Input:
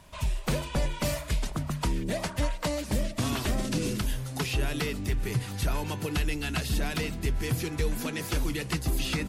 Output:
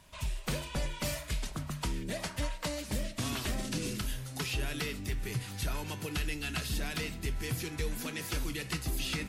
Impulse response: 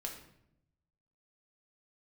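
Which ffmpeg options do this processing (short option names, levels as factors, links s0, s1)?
-filter_complex "[0:a]asplit=2[s0][s1];[s1]highpass=1200[s2];[1:a]atrim=start_sample=2205,afade=t=out:st=0.16:d=0.01,atrim=end_sample=7497[s3];[s2][s3]afir=irnorm=-1:irlink=0,volume=0.841[s4];[s0][s4]amix=inputs=2:normalize=0,volume=0.473"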